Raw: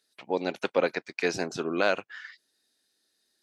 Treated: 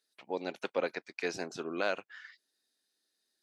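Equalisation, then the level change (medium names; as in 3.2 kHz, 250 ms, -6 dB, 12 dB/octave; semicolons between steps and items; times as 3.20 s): peaking EQ 96 Hz -5.5 dB 1.7 oct; -7.0 dB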